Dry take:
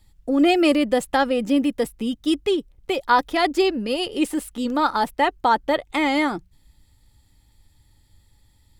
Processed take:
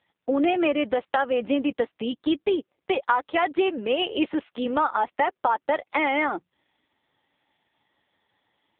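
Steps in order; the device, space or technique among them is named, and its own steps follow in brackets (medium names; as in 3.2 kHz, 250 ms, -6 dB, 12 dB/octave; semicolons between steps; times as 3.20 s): voicemail (band-pass 430–3200 Hz; compression 8:1, threshold -24 dBFS, peak gain reduction 12.5 dB; trim +6 dB; AMR-NB 5.9 kbps 8 kHz)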